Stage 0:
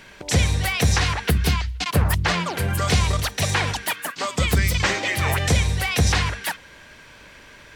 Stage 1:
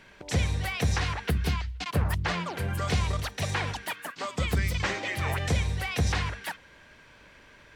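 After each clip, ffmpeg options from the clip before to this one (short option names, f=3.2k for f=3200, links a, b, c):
-af "highshelf=f=4.4k:g=-7,volume=-7dB"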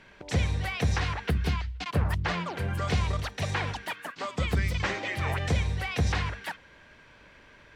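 -af "highshelf=f=7.6k:g=-10.5"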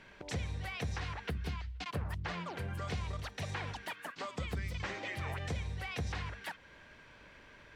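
-af "acompressor=threshold=-39dB:ratio=2,volume=-2.5dB"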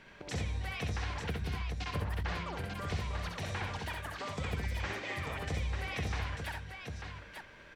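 -af "aecho=1:1:65|84|893:0.631|0.266|0.531"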